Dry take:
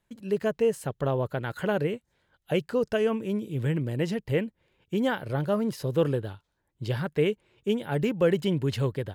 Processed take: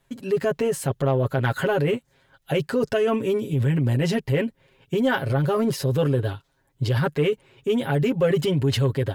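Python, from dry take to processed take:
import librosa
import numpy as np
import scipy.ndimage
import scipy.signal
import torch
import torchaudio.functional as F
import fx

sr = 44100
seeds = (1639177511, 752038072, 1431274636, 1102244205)

p1 = x + 0.89 * np.pad(x, (int(7.4 * sr / 1000.0), 0))[:len(x)]
p2 = fx.over_compress(p1, sr, threshold_db=-27.0, ratio=-0.5)
p3 = p1 + (p2 * librosa.db_to_amplitude(-2.0))
y = 10.0 ** (-9.5 / 20.0) * np.tanh(p3 / 10.0 ** (-9.5 / 20.0))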